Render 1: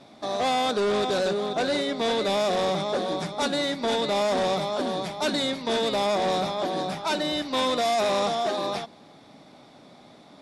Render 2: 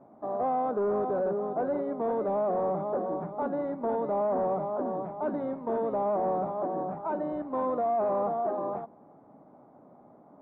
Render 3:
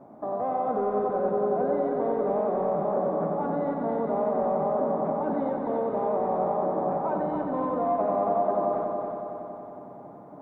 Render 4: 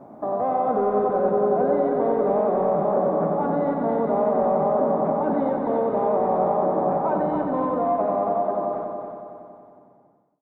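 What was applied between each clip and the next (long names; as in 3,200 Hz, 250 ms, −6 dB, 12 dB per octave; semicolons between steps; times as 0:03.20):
low-pass filter 1,100 Hz 24 dB per octave; low-shelf EQ 160 Hz −6 dB; level −2.5 dB
brickwall limiter −29 dBFS, peak gain reduction 7.5 dB; on a send: echo machine with several playback heads 92 ms, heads first and third, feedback 71%, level −6 dB; on the sum: level +5.5 dB
fade-out on the ending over 3.03 s; level +5 dB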